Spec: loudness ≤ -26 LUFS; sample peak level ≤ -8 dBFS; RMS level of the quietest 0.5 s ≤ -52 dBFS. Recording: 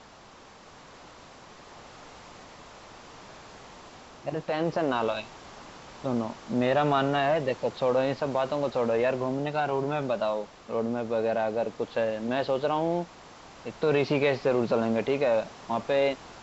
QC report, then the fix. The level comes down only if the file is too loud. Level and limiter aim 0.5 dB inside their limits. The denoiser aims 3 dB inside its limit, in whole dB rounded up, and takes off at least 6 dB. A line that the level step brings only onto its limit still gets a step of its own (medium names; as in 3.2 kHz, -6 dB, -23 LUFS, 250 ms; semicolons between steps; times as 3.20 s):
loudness -27.5 LUFS: pass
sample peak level -12.5 dBFS: pass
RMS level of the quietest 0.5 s -51 dBFS: fail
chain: noise reduction 6 dB, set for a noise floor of -51 dBFS